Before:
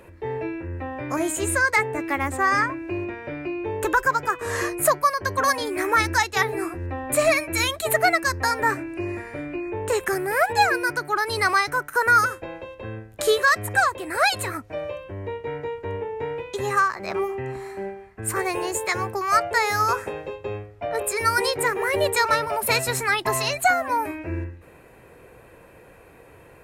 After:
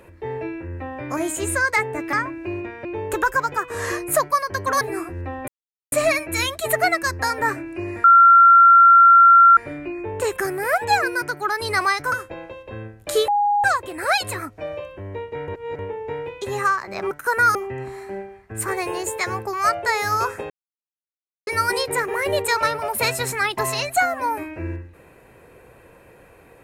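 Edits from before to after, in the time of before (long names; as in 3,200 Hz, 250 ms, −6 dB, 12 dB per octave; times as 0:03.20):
0:02.13–0:02.57: remove
0:03.29–0:03.56: remove
0:05.52–0:06.46: remove
0:07.13: splice in silence 0.44 s
0:09.25: insert tone 1,370 Hz −7 dBFS 1.53 s
0:11.80–0:12.24: move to 0:17.23
0:13.40–0:13.76: beep over 822 Hz −15.5 dBFS
0:15.60–0:15.91: reverse
0:20.18–0:21.15: silence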